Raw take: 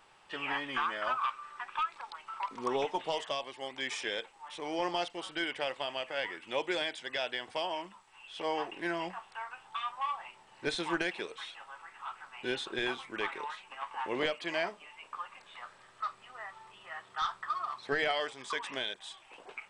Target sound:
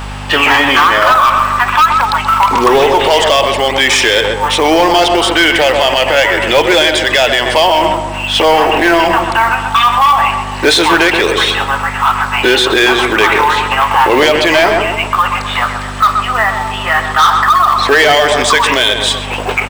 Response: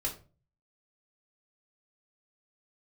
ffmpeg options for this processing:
-filter_complex "[0:a]highpass=280,asoftclip=type=tanh:threshold=-30dB,acrusher=bits=6:mode=log:mix=0:aa=0.000001,aeval=exprs='val(0)+0.00158*(sin(2*PI*50*n/s)+sin(2*PI*2*50*n/s)/2+sin(2*PI*3*50*n/s)/3+sin(2*PI*4*50*n/s)/4+sin(2*PI*5*50*n/s)/5)':c=same,asplit=2[a][b];[b]adelay=128,lowpass=f=1.9k:p=1,volume=-8dB,asplit=2[c][d];[d]adelay=128,lowpass=f=1.9k:p=1,volume=0.5,asplit=2[e][f];[f]adelay=128,lowpass=f=1.9k:p=1,volume=0.5,asplit=2[g][h];[h]adelay=128,lowpass=f=1.9k:p=1,volume=0.5,asplit=2[i][j];[j]adelay=128,lowpass=f=1.9k:p=1,volume=0.5,asplit=2[k][l];[l]adelay=128,lowpass=f=1.9k:p=1,volume=0.5[m];[a][c][e][g][i][k][m]amix=inputs=7:normalize=0,alimiter=level_in=34.5dB:limit=-1dB:release=50:level=0:latency=1,volume=-1dB"

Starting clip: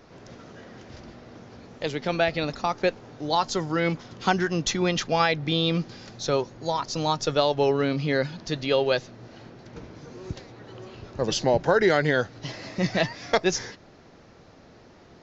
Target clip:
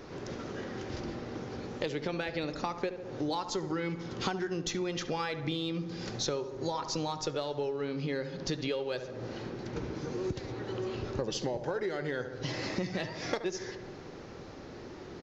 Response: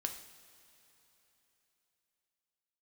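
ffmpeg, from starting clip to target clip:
-filter_complex "[0:a]asplit=2[a][b];[b]asoftclip=type=hard:threshold=-19dB,volume=-11.5dB[c];[a][c]amix=inputs=2:normalize=0,equalizer=f=380:t=o:w=0.51:g=5.5,bandreject=f=670:w=12,asplit=2[d][e];[e]adelay=70,lowpass=f=1.8k:p=1,volume=-11dB,asplit=2[f][g];[g]adelay=70,lowpass=f=1.8k:p=1,volume=0.55,asplit=2[h][i];[i]adelay=70,lowpass=f=1.8k:p=1,volume=0.55,asplit=2[j][k];[k]adelay=70,lowpass=f=1.8k:p=1,volume=0.55,asplit=2[l][m];[m]adelay=70,lowpass=f=1.8k:p=1,volume=0.55,asplit=2[n][o];[o]adelay=70,lowpass=f=1.8k:p=1,volume=0.55[p];[d][f][h][j][l][n][p]amix=inputs=7:normalize=0,acompressor=threshold=-32dB:ratio=16,asplit=2[q][r];[1:a]atrim=start_sample=2205[s];[r][s]afir=irnorm=-1:irlink=0,volume=-11.5dB[t];[q][t]amix=inputs=2:normalize=0"

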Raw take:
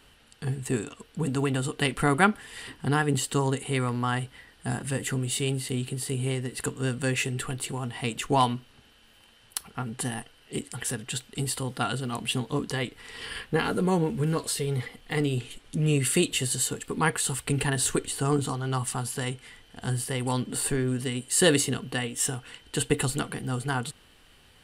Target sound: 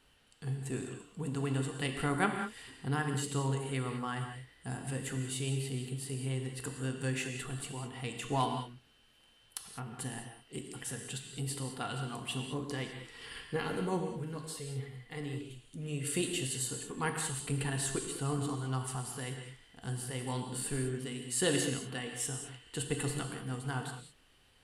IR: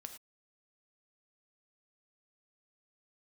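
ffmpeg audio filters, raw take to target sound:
-filter_complex "[0:a]asettb=1/sr,asplit=3[a][b][c];[a]atrim=end=14.004[d];[b]atrim=start=14:end=16.07,asetpts=PTS-STARTPTS,afade=t=in:d=0.004:c=qsin,afade=t=out:st=2.066:d=0.004:c=qsin,flanger=delay=7.6:depth=4:regen=81:speed=1.3:shape=triangular[e];[c]atrim=start=16.066[f];[d][e]acrossfade=d=0.004:c1=hsin:c2=qsin[g];[g][f]acrossfade=d=0.004:c1=qsin:c2=hsin[h];[1:a]atrim=start_sample=2205,asetrate=23814,aresample=44100[i];[h][i]afir=irnorm=-1:irlink=0,volume=-7.5dB"

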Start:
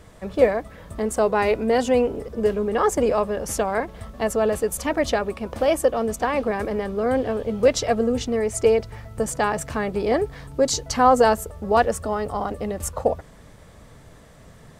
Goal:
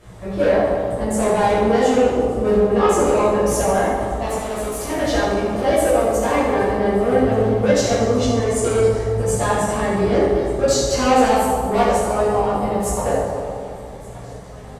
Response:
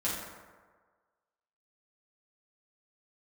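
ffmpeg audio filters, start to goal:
-filter_complex "[0:a]asoftclip=type=tanh:threshold=-18.5dB,flanger=delay=16:depth=3.5:speed=1.4,asettb=1/sr,asplit=3[a][b][c];[a]atrim=end=4.264[d];[b]atrim=start=4.26:end=4.9,asetpts=PTS-STARTPTS,afade=t=in:d=0.004:c=qsin,afade=t=out:st=0.636:d=0.004:c=qsin,asoftclip=type=hard:threshold=-35dB[e];[c]atrim=start=4.896[f];[d][e]acrossfade=d=0.004:c1=hsin:c2=qsin[g];[g][f]acrossfade=d=0.004:c1=qsin:c2=hsin,aecho=1:1:1178|2356|3534|4712:0.075|0.0442|0.0261|0.0154[h];[1:a]atrim=start_sample=2205,asetrate=26019,aresample=44100[i];[h][i]afir=irnorm=-1:irlink=0"

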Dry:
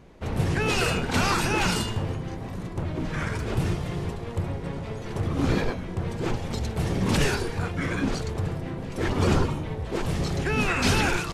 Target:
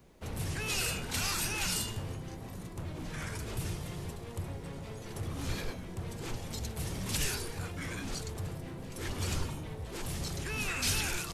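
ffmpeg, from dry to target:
-filter_complex "[0:a]acrossover=split=120|1700[a][b][c];[b]volume=31.5dB,asoftclip=hard,volume=-31.5dB[d];[c]aemphasis=mode=production:type=bsi[e];[a][d][e]amix=inputs=3:normalize=0,volume=-9dB"

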